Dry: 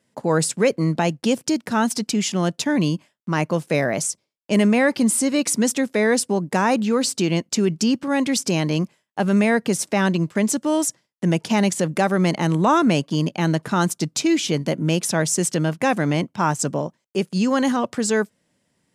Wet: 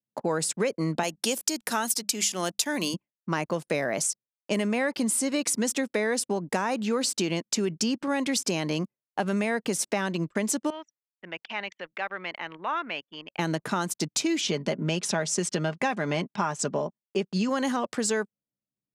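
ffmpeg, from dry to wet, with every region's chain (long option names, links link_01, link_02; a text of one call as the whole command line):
ffmpeg -i in.wav -filter_complex "[0:a]asettb=1/sr,asplit=3[link_01][link_02][link_03];[link_01]atrim=end=1.034[link_04];[link_02]atrim=start=1.03:end=2.94,asetpts=PTS-STARTPTS,afade=type=in:duration=0.004:curve=qsin,afade=type=out:start_time=1.906:duration=0.004:curve=qsin,aemphasis=mode=production:type=bsi,bandreject=frequency=50:width_type=h:width=6,bandreject=frequency=100:width_type=h:width=6,bandreject=frequency=150:width_type=h:width=6,bandreject=frequency=200:width_type=h:width=6[link_05];[link_03]atrim=start=2.936[link_06];[link_04][link_05]acrossfade=duration=0.004:curve1=hsin:curve2=qsin[link_07];[link_07][link_06]acrossfade=duration=0.004:curve1=qsin:curve2=hsin,asettb=1/sr,asplit=3[link_08][link_09][link_10];[link_08]atrim=end=10.704[link_11];[link_09]atrim=start=10.7:end=13.39,asetpts=PTS-STARTPTS,afade=type=in:duration=0.004:curve=qsin,afade=type=out:start_time=2.686:duration=0.004:curve=qsin,lowpass=frequency=2600:width=0.5412,lowpass=frequency=2600:width=1.3066,aderivative,acontrast=78[link_12];[link_10]atrim=start=13.386[link_13];[link_11][link_12]acrossfade=duration=0.004:curve1=hsin:curve2=qsin[link_14];[link_14][link_13]acrossfade=duration=0.004:curve1=qsin:curve2=hsin,asettb=1/sr,asplit=3[link_15][link_16][link_17];[link_15]atrim=end=14.414[link_18];[link_16]atrim=start=14.41:end=17.49,asetpts=PTS-STARTPTS,afade=type=in:duration=0.004:curve=qsin,afade=type=out:start_time=3.076:duration=0.004:curve=qsin,lowpass=6400,aecho=1:1:4.9:0.42,atrim=end_sample=135828[link_19];[link_17]atrim=start=17.486[link_20];[link_18][link_19]acrossfade=duration=0.004:curve1=hsin:curve2=qsin[link_21];[link_21][link_20]acrossfade=duration=0.004:curve1=qsin:curve2=hsin,highpass=frequency=290:poles=1,anlmdn=0.1,acompressor=threshold=-23dB:ratio=6" out.wav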